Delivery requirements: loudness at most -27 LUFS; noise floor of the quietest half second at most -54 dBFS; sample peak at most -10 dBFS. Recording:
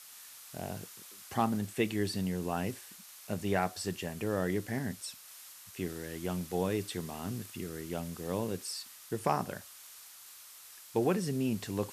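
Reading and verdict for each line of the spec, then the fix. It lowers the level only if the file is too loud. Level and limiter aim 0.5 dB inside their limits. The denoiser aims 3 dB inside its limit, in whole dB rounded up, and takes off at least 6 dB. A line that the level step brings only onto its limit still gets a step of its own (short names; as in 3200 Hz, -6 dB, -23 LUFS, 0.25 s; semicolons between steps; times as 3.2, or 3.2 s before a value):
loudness -35.0 LUFS: OK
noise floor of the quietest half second -52 dBFS: fail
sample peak -16.0 dBFS: OK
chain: denoiser 6 dB, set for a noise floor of -52 dBFS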